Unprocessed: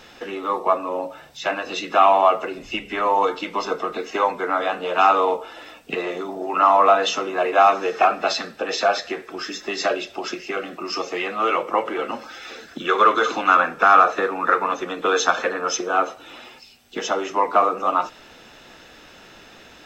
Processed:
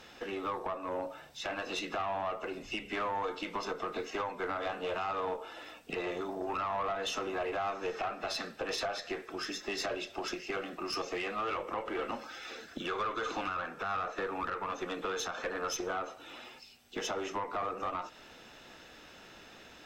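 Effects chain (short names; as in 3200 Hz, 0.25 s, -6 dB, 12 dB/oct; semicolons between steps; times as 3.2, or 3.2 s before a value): compressor 3:1, threshold -23 dBFS, peak gain reduction 11 dB; limiter -16.5 dBFS, peak gain reduction 8 dB; tube stage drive 20 dB, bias 0.4; gain -6 dB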